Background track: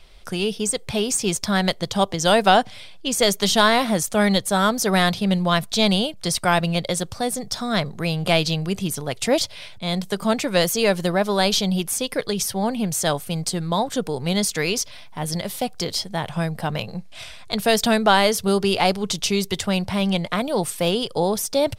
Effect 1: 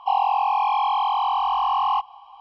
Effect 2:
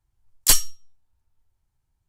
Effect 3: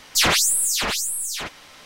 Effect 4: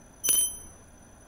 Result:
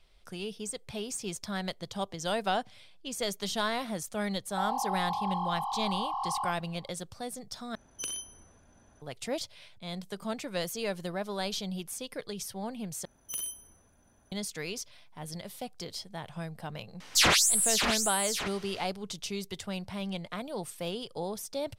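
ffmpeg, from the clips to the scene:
-filter_complex "[4:a]asplit=2[s0][s1];[0:a]volume=0.188[s2];[1:a]asuperstop=centerf=2300:order=4:qfactor=1.1[s3];[s0]lowpass=7700[s4];[s1]aeval=exprs='(mod(3.98*val(0)+1,2)-1)/3.98':c=same[s5];[3:a]lowpass=12000[s6];[s2]asplit=3[s7][s8][s9];[s7]atrim=end=7.754[s10];[s4]atrim=end=1.27,asetpts=PTS-STARTPTS,volume=0.398[s11];[s8]atrim=start=9.016:end=13.054[s12];[s5]atrim=end=1.27,asetpts=PTS-STARTPTS,volume=0.237[s13];[s9]atrim=start=14.316[s14];[s3]atrim=end=2.4,asetpts=PTS-STARTPTS,volume=0.251,afade=t=in:d=0.004:c=hsin,afade=t=out:st=2.396:d=0.004:c=hsin,adelay=4500[s15];[s6]atrim=end=1.85,asetpts=PTS-STARTPTS,volume=0.596,afade=t=in:d=0.004:c=hsin,afade=t=out:st=1.846:d=0.004:c=hsin,adelay=749700S[s16];[s10][s11]acrossfade=d=0.004:c1=hsin:c2=hsin[s17];[s17][s12]acrossfade=d=0.004:c1=hsin:c2=hsin[s18];[s18][s13]acrossfade=d=0.004:c1=hsin:c2=hsin[s19];[s19][s14]acrossfade=d=0.004:c1=hsin:c2=hsin[s20];[s20][s15][s16]amix=inputs=3:normalize=0"

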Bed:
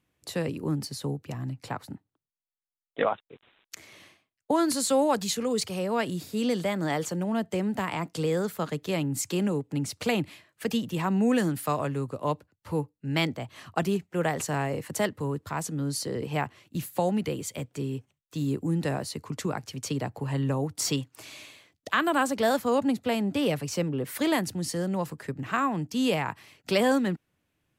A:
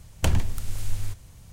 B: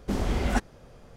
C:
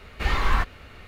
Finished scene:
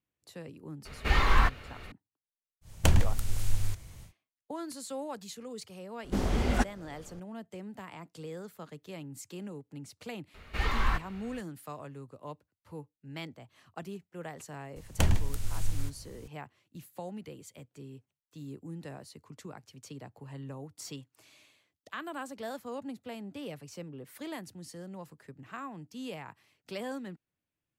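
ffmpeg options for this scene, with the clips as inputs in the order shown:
-filter_complex "[3:a]asplit=2[s0][s1];[1:a]asplit=2[s2][s3];[0:a]volume=0.178[s4];[s1]equalizer=f=460:t=o:w=0.77:g=-2[s5];[s0]atrim=end=1.07,asetpts=PTS-STARTPTS,volume=0.891,afade=t=in:d=0.004:c=hsin,afade=t=out:st=1.066:d=0.004:c=hsin,adelay=850[s6];[s2]atrim=end=1.52,asetpts=PTS-STARTPTS,volume=0.944,afade=t=in:d=0.1,afade=t=out:st=1.42:d=0.1,adelay=2610[s7];[2:a]atrim=end=1.16,asetpts=PTS-STARTPTS,volume=0.841,afade=t=in:d=0.004:c=hsin,afade=t=out:st=1.156:d=0.004:c=hsin,adelay=6040[s8];[s5]atrim=end=1.07,asetpts=PTS-STARTPTS,volume=0.501,afade=t=in:d=0.004:c=hsin,afade=t=out:st=1.066:d=0.004:c=hsin,adelay=455994S[s9];[s3]atrim=end=1.52,asetpts=PTS-STARTPTS,volume=0.708,afade=t=in:d=0.004:c=hsin,afade=t=out:st=1.516:d=0.004:c=hsin,adelay=650916S[s10];[s4][s6][s7][s8][s9][s10]amix=inputs=6:normalize=0"

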